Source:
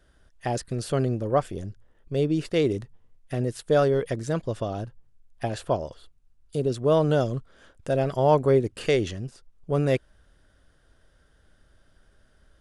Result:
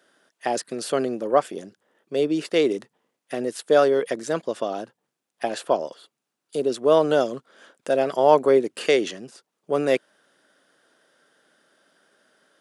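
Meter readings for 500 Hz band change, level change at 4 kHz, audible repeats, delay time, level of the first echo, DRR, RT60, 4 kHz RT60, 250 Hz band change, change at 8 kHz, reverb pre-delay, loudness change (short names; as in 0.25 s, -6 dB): +3.5 dB, +5.0 dB, none, none, none, none, none, none, +0.5 dB, +5.0 dB, none, +3.0 dB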